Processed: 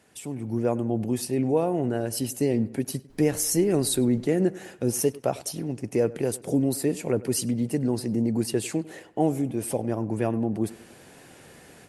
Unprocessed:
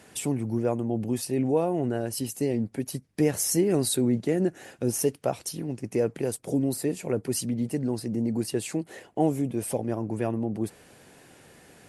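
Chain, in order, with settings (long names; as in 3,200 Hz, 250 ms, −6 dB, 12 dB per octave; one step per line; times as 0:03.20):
tape delay 99 ms, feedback 52%, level −18 dB, low-pass 2,800 Hz
automatic gain control gain up to 12 dB
0:03.09–0:04.25: background noise brown −43 dBFS
level −8.5 dB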